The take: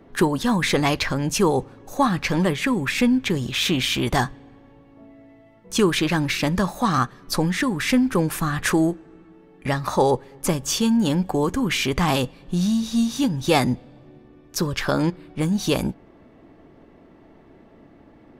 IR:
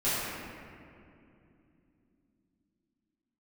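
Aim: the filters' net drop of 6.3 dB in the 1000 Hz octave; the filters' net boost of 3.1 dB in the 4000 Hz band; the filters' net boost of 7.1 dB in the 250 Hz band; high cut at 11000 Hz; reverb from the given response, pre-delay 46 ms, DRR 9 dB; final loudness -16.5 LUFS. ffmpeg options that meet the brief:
-filter_complex "[0:a]lowpass=11k,equalizer=f=250:t=o:g=9,equalizer=f=1k:t=o:g=-9,equalizer=f=4k:t=o:g=4.5,asplit=2[a][b];[1:a]atrim=start_sample=2205,adelay=46[c];[b][c]afir=irnorm=-1:irlink=0,volume=-20.5dB[d];[a][d]amix=inputs=2:normalize=0,volume=0.5dB"

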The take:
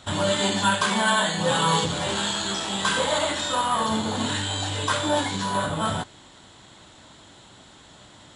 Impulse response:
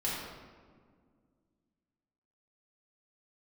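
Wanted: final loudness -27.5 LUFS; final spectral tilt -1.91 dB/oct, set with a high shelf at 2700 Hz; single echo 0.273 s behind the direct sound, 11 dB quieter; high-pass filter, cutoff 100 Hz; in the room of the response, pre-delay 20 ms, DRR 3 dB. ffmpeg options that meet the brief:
-filter_complex "[0:a]highpass=100,highshelf=f=2.7k:g=6.5,aecho=1:1:273:0.282,asplit=2[a][b];[1:a]atrim=start_sample=2205,adelay=20[c];[b][c]afir=irnorm=-1:irlink=0,volume=-9dB[d];[a][d]amix=inputs=2:normalize=0,volume=-8dB"

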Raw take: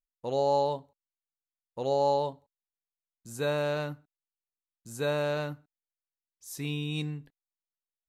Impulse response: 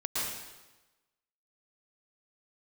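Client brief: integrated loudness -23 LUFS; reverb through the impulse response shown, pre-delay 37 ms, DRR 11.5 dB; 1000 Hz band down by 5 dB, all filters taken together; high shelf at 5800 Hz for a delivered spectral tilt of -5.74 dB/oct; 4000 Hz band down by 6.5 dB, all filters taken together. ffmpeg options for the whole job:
-filter_complex "[0:a]equalizer=f=1k:t=o:g=-6,equalizer=f=4k:t=o:g=-5,highshelf=f=5.8k:g=-6.5,asplit=2[a][b];[1:a]atrim=start_sample=2205,adelay=37[c];[b][c]afir=irnorm=-1:irlink=0,volume=-18dB[d];[a][d]amix=inputs=2:normalize=0,volume=9.5dB"

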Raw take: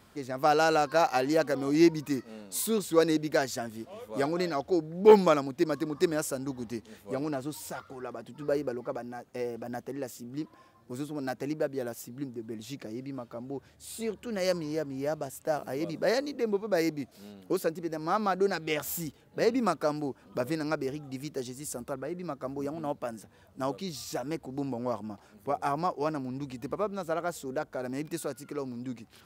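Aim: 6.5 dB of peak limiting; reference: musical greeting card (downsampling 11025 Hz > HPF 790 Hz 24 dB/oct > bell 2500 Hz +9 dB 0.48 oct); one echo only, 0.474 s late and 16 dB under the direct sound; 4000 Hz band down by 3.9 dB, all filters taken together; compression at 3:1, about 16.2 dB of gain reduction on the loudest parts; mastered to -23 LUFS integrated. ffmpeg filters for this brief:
-af "equalizer=f=4k:t=o:g=-7.5,acompressor=threshold=-34dB:ratio=3,alimiter=level_in=3.5dB:limit=-24dB:level=0:latency=1,volume=-3.5dB,aecho=1:1:474:0.158,aresample=11025,aresample=44100,highpass=f=790:w=0.5412,highpass=f=790:w=1.3066,equalizer=f=2.5k:t=o:w=0.48:g=9,volume=24.5dB"

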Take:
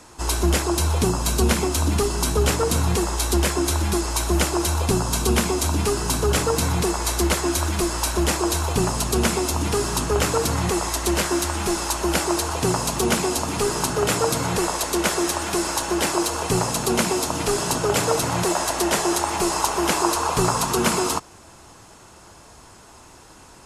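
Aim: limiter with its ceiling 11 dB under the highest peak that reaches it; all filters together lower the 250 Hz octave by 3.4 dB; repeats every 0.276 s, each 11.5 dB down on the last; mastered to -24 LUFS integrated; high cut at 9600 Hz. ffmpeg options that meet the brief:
-af "lowpass=9.6k,equalizer=f=250:t=o:g=-5.5,alimiter=limit=-16dB:level=0:latency=1,aecho=1:1:276|552|828:0.266|0.0718|0.0194,volume=1dB"

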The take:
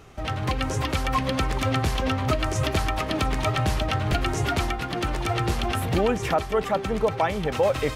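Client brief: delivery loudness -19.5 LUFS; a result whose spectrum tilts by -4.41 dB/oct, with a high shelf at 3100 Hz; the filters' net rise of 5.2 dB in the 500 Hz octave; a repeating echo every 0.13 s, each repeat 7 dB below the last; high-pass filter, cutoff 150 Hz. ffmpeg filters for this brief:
-af "highpass=150,equalizer=f=500:t=o:g=6.5,highshelf=f=3.1k:g=-5,aecho=1:1:130|260|390|520|650:0.447|0.201|0.0905|0.0407|0.0183,volume=3.5dB"

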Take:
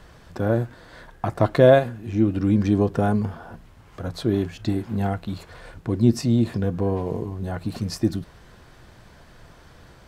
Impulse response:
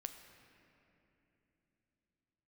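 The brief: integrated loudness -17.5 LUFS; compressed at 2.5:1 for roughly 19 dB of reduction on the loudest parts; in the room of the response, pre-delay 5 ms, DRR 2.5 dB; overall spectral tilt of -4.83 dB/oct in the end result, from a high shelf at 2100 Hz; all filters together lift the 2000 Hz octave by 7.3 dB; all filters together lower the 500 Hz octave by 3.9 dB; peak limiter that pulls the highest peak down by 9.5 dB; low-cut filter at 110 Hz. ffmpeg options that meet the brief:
-filter_complex "[0:a]highpass=110,equalizer=f=500:t=o:g=-6,equalizer=f=2k:t=o:g=6,highshelf=f=2.1k:g=8,acompressor=threshold=-41dB:ratio=2.5,alimiter=level_in=5dB:limit=-24dB:level=0:latency=1,volume=-5dB,asplit=2[a][b];[1:a]atrim=start_sample=2205,adelay=5[c];[b][c]afir=irnorm=-1:irlink=0,volume=1dB[d];[a][d]amix=inputs=2:normalize=0,volume=22dB"

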